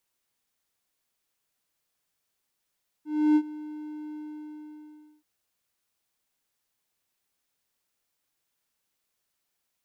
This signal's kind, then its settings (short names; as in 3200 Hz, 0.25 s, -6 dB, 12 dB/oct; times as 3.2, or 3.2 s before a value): ADSR triangle 303 Hz, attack 0.308 s, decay 62 ms, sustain -19.5 dB, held 1.09 s, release 1.09 s -14 dBFS